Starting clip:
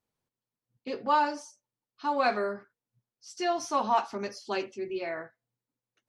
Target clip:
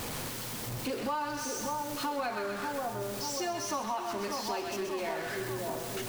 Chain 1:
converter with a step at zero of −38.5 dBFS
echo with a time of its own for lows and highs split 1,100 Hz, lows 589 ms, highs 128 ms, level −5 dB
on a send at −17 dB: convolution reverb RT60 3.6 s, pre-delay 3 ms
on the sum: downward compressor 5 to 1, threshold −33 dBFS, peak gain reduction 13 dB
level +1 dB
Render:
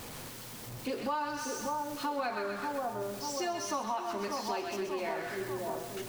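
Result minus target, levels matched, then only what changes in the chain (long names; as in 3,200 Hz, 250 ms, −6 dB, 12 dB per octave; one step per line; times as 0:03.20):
converter with a step at zero: distortion −6 dB
change: converter with a step at zero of −31.5 dBFS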